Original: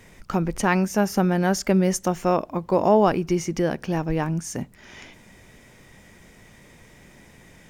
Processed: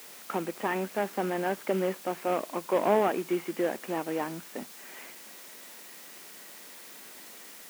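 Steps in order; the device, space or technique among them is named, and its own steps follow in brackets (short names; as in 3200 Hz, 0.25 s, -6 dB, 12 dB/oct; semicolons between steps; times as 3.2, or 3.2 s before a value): army field radio (BPF 310–2900 Hz; CVSD 16 kbps; white noise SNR 16 dB); HPF 180 Hz 24 dB/oct; gain -2.5 dB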